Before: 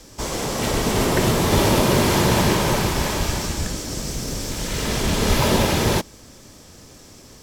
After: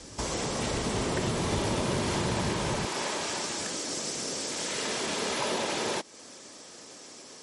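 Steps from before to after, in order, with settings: HPF 43 Hz 12 dB/oct, from 2.85 s 330 Hz; compressor 2.5:1, threshold -31 dBFS, peak gain reduction 12 dB; MP3 48 kbps 44100 Hz

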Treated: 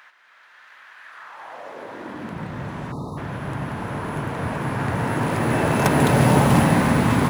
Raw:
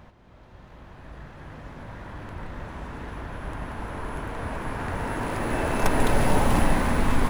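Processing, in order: harmoniser +3 st -15 dB; spectral delete 2.92–3.17, 1300–3600 Hz; high-pass sweep 1600 Hz -> 130 Hz, 1.07–2.5; gain +5 dB

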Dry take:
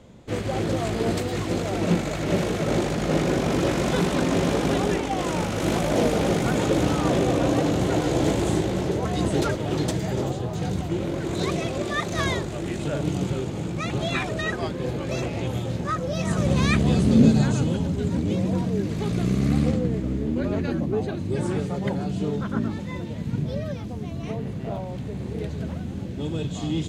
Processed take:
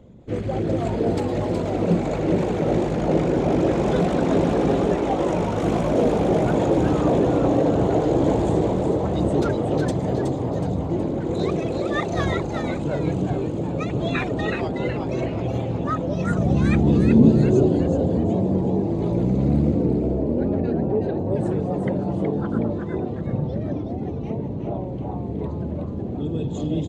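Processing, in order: formant sharpening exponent 1.5; frequency-shifting echo 0.37 s, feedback 42%, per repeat +150 Hz, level -5.5 dB; gain +1.5 dB

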